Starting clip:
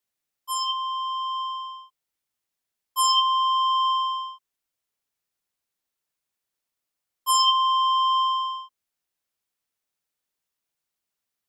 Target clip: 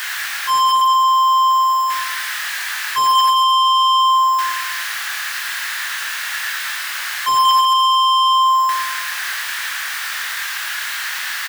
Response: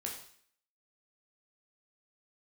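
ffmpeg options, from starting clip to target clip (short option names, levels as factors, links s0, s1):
-filter_complex "[0:a]aeval=exprs='val(0)+0.5*0.0376*sgn(val(0))':c=same,asplit=2[s0][s1];[s1]adelay=26,volume=0.562[s2];[s0][s2]amix=inputs=2:normalize=0,aecho=1:1:111|222|333|444|555|666:0.631|0.303|0.145|0.0698|0.0335|0.0161,acrusher=bits=6:mode=log:mix=0:aa=0.000001,highpass=f=1000:w=0.5412,highpass=f=1000:w=1.3066,equalizer=f=1700:t=o:w=0.48:g=11.5,acontrast=59,aeval=exprs='0.531*(cos(1*acos(clip(val(0)/0.531,-1,1)))-cos(1*PI/2))+0.188*(cos(5*acos(clip(val(0)/0.531,-1,1)))-cos(5*PI/2))':c=same,acrossover=split=4700[s3][s4];[s4]acompressor=threshold=0.0447:ratio=4:attack=1:release=60[s5];[s3][s5]amix=inputs=2:normalize=0,volume=0.708"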